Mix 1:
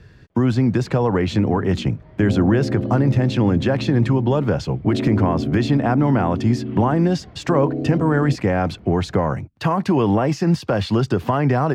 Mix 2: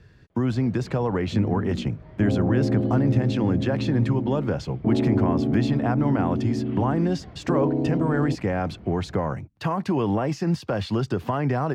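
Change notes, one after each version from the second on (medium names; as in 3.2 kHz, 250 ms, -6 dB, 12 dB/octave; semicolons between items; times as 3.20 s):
speech -6.0 dB; second sound: remove Chebyshev low-pass 780 Hz, order 10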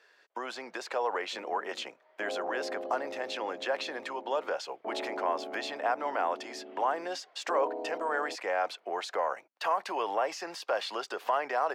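first sound -10.0 dB; master: add high-pass 550 Hz 24 dB/octave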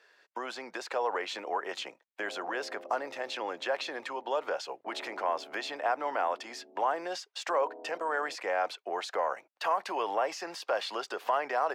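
first sound: muted; second sound -10.0 dB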